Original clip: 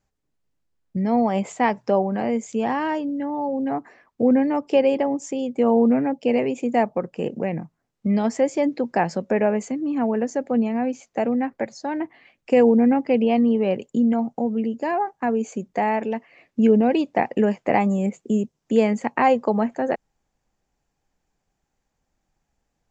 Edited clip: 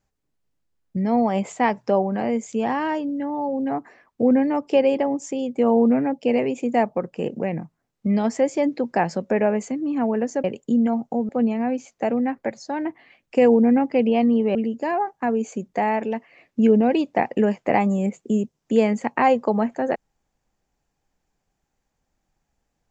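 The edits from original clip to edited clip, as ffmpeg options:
ffmpeg -i in.wav -filter_complex "[0:a]asplit=4[link_01][link_02][link_03][link_04];[link_01]atrim=end=10.442[link_05];[link_02]atrim=start=13.698:end=14.552[link_06];[link_03]atrim=start=10.438:end=13.702[link_07];[link_04]atrim=start=14.548[link_08];[link_05][link_06]acrossfade=duration=0.004:curve1=hsin:curve2=hsin[link_09];[link_09][link_07]acrossfade=duration=0.004:curve1=hsin:curve2=hsin[link_10];[link_10][link_08]acrossfade=duration=0.004:curve1=hsin:curve2=hsin" out.wav

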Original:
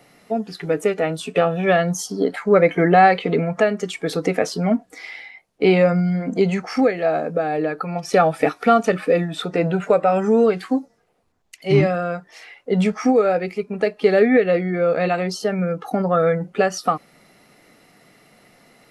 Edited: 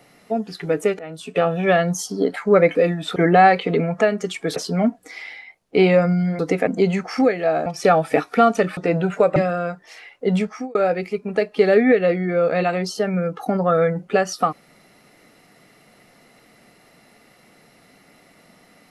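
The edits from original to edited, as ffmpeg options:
ffmpeg -i in.wav -filter_complex "[0:a]asplit=11[link_01][link_02][link_03][link_04][link_05][link_06][link_07][link_08][link_09][link_10][link_11];[link_01]atrim=end=0.99,asetpts=PTS-STARTPTS,afade=type=out:start_time=0.986:duration=0.004:curve=hsin:silence=0.11885[link_12];[link_02]atrim=start=0.99:end=2.752,asetpts=PTS-STARTPTS,afade=type=in:duration=0.5:silence=0.11885[link_13];[link_03]atrim=start=9.058:end=9.472[link_14];[link_04]atrim=start=2.748:end=4.152[link_15];[link_05]atrim=start=4.428:end=6.262[link_16];[link_06]atrim=start=4.148:end=4.432[link_17];[link_07]atrim=start=6.258:end=7.252[link_18];[link_08]atrim=start=7.948:end=9.062[link_19];[link_09]atrim=start=9.468:end=10.062[link_20];[link_10]atrim=start=11.808:end=13.2,asetpts=PTS-STARTPTS,afade=type=out:start_time=0.932:duration=0.46[link_21];[link_11]atrim=start=13.2,asetpts=PTS-STARTPTS,afade=type=in:duration=0.004:curve=hsin[link_22];[link_12][link_13]concat=n=2:v=0:a=1[link_23];[link_23][link_14]acrossfade=duration=0.004:curve1=hsin:curve2=hsin[link_24];[link_24][link_15]acrossfade=duration=0.004:curve1=hsin:curve2=hsin[link_25];[link_25][link_16]acrossfade=duration=0.004:curve1=hsin:curve2=hsin[link_26];[link_26][link_17]acrossfade=duration=0.004:curve1=hsin:curve2=hsin[link_27];[link_27][link_18]acrossfade=duration=0.004:curve1=hsin:curve2=hsin[link_28];[link_28][link_19]acrossfade=duration=0.004:curve1=hsin:curve2=hsin[link_29];[link_29][link_20]acrossfade=duration=0.004:curve1=hsin:curve2=hsin[link_30];[link_21][link_22]concat=n=2:v=0:a=1[link_31];[link_30][link_31]acrossfade=duration=0.004:curve1=hsin:curve2=hsin" out.wav

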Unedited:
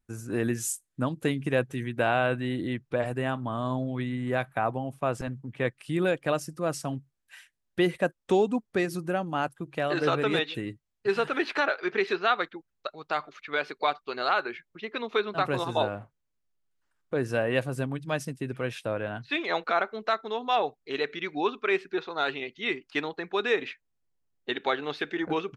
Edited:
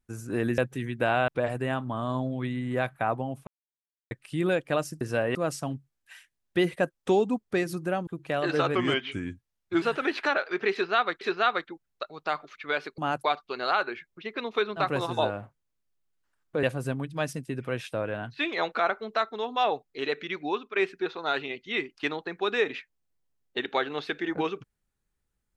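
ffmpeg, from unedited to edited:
ffmpeg -i in.wav -filter_complex "[0:a]asplit=15[link_01][link_02][link_03][link_04][link_05][link_06][link_07][link_08][link_09][link_10][link_11][link_12][link_13][link_14][link_15];[link_01]atrim=end=0.582[link_16];[link_02]atrim=start=1.558:end=2.262[link_17];[link_03]atrim=start=2.838:end=5.03,asetpts=PTS-STARTPTS,afade=type=out:start_time=2.188:duration=0.004:curve=hsin[link_18];[link_04]atrim=start=5.03:end=5.67,asetpts=PTS-STARTPTS,volume=0[link_19];[link_05]atrim=start=5.67:end=6.572,asetpts=PTS-STARTPTS,afade=type=in:duration=0.004:curve=hsin[link_20];[link_06]atrim=start=17.208:end=17.552[link_21];[link_07]atrim=start=6.568:end=9.292[link_22];[link_08]atrim=start=9.548:end=10.234[link_23];[link_09]atrim=start=10.23:end=11.14,asetpts=PTS-STARTPTS,asetrate=37485,aresample=44100[link_24];[link_10]atrim=start=11.136:end=12.532[link_25];[link_11]atrim=start=12.048:end=13.822[link_26];[link_12]atrim=start=9.288:end=9.552[link_27];[link_13]atrim=start=13.818:end=17.212[link_28];[link_14]atrim=start=17.548:end=21.68,asetpts=PTS-STARTPTS,afade=type=out:start_time=3.612:duration=0.52:curve=qsin:silence=0.316228[link_29];[link_15]atrim=start=21.68,asetpts=PTS-STARTPTS,afade=type=in:duration=0.004:curve=hsin:silence=0.316228[link_30];[link_16][link_17]acrossfade=duration=0.004:curve1=hsin:curve2=hsin[link_31];[link_18][link_19][link_20]concat=n=3:v=0:a=1[link_32];[link_31][link_32]acrossfade=duration=0.004:curve1=hsin:curve2=hsin[link_33];[link_33][link_21]acrossfade=duration=0.004:curve1=hsin:curve2=hsin[link_34];[link_34][link_22]acrossfade=duration=0.004:curve1=hsin:curve2=hsin[link_35];[link_35][link_23]acrossfade=duration=0.004:curve1=hsin:curve2=hsin[link_36];[link_36][link_24]acrossfade=duration=0.004:curve1=hsin:curve2=hsin[link_37];[link_37][link_25]acrossfade=duration=0.004:curve1=hsin:curve2=hsin[link_38];[link_38][link_26]acrossfade=duration=0.004:curve1=hsin:curve2=hsin[link_39];[link_39][link_27]acrossfade=duration=0.004:curve1=hsin:curve2=hsin[link_40];[link_40][link_28]acrossfade=duration=0.004:curve1=hsin:curve2=hsin[link_41];[link_29][link_30]concat=n=2:v=0:a=1[link_42];[link_41][link_42]acrossfade=duration=0.004:curve1=hsin:curve2=hsin" out.wav

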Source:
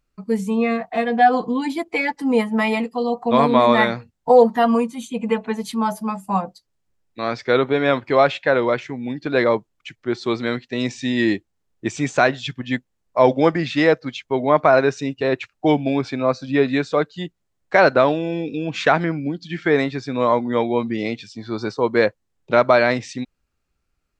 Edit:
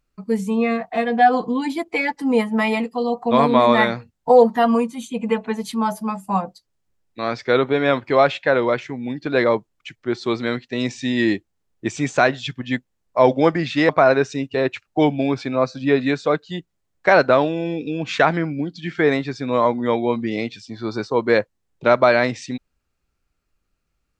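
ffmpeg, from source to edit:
ffmpeg -i in.wav -filter_complex "[0:a]asplit=2[link_01][link_02];[link_01]atrim=end=13.892[link_03];[link_02]atrim=start=14.558[link_04];[link_03][link_04]acrossfade=duration=0.004:curve1=hsin:curve2=hsin" out.wav

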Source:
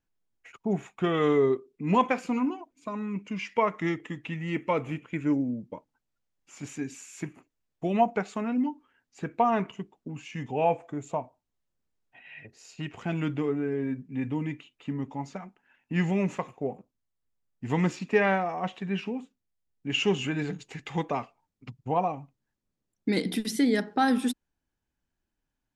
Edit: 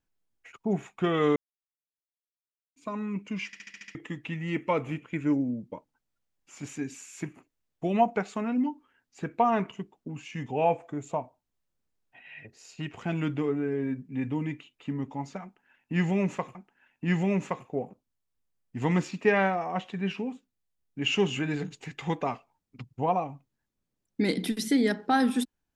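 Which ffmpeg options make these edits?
ffmpeg -i in.wav -filter_complex "[0:a]asplit=11[link_01][link_02][link_03][link_04][link_05][link_06][link_07][link_08][link_09][link_10][link_11];[link_01]atrim=end=1.36,asetpts=PTS-STARTPTS,afade=type=out:start_time=1.356:duration=0.004:curve=hsin[link_12];[link_02]atrim=start=1.36:end=2.76,asetpts=PTS-STARTPTS,volume=0[link_13];[link_03]atrim=start=2.76:end=3.532,asetpts=PTS-STARTPTS,afade=type=in:duration=0.004:curve=hsin[link_14];[link_04]atrim=start=3.458:end=3.532[link_15];[link_05]atrim=start=3.458:end=3.532[link_16];[link_06]atrim=start=3.458:end=3.532[link_17];[link_07]atrim=start=3.458:end=3.532[link_18];[link_08]atrim=start=3.458:end=3.532[link_19];[link_09]atrim=start=3.458:end=3.532[link_20];[link_10]atrim=start=3.948:end=16.552[link_21];[link_11]atrim=start=15.428[link_22];[link_12][link_13][link_14]concat=n=3:v=0:a=1[link_23];[link_23][link_15]acrossfade=duration=0.004:curve1=hsin:curve2=hsin[link_24];[link_24][link_16]acrossfade=duration=0.004:curve1=hsin:curve2=hsin[link_25];[link_25][link_17]acrossfade=duration=0.004:curve1=hsin:curve2=hsin[link_26];[link_26][link_18]acrossfade=duration=0.004:curve1=hsin:curve2=hsin[link_27];[link_27][link_19]acrossfade=duration=0.004:curve1=hsin:curve2=hsin[link_28];[link_28][link_20]acrossfade=duration=0.004:curve1=hsin:curve2=hsin[link_29];[link_29][link_21]acrossfade=duration=0.004:curve1=hsin:curve2=hsin[link_30];[link_30][link_22]acrossfade=duration=0.004:curve1=hsin:curve2=hsin" out.wav

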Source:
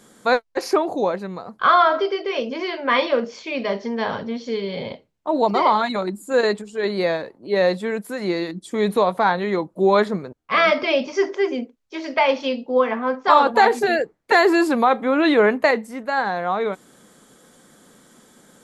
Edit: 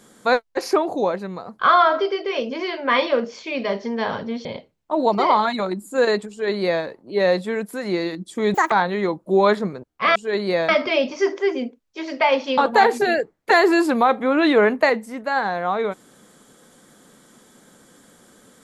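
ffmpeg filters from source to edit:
ffmpeg -i in.wav -filter_complex "[0:a]asplit=7[link_01][link_02][link_03][link_04][link_05][link_06][link_07];[link_01]atrim=end=4.452[link_08];[link_02]atrim=start=4.808:end=8.904[link_09];[link_03]atrim=start=8.9:end=9.21,asetpts=PTS-STARTPTS,asetrate=77616,aresample=44100[link_10];[link_04]atrim=start=9.206:end=10.652[link_11];[link_05]atrim=start=6.658:end=7.192[link_12];[link_06]atrim=start=10.648:end=12.542[link_13];[link_07]atrim=start=13.388[link_14];[link_08][link_09]acrossfade=duration=0.004:curve1=hsin:curve2=hsin[link_15];[link_15][link_10]acrossfade=duration=0.004:curve1=hsin:curve2=hsin[link_16];[link_16][link_11]acrossfade=duration=0.004:curve1=hsin:curve2=hsin[link_17];[link_17][link_12]acrossfade=duration=0.004:curve1=hsin:curve2=hsin[link_18];[link_18][link_13]acrossfade=duration=0.004:curve1=hsin:curve2=hsin[link_19];[link_19][link_14]acrossfade=duration=0.004:curve1=hsin:curve2=hsin" out.wav

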